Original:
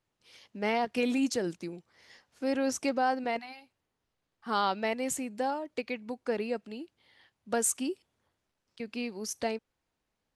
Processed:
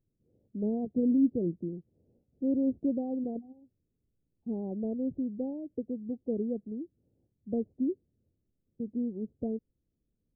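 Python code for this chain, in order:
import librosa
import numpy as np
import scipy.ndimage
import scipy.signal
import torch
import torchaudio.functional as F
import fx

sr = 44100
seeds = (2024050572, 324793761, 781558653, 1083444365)

y = scipy.ndimage.gaussian_filter1d(x, 23.0, mode='constant')
y = y * 10.0 ** (7.5 / 20.0)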